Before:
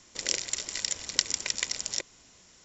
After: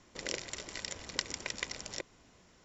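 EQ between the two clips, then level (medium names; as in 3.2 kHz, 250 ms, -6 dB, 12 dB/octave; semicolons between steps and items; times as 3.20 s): low-pass 1.4 kHz 6 dB/octave; +1.0 dB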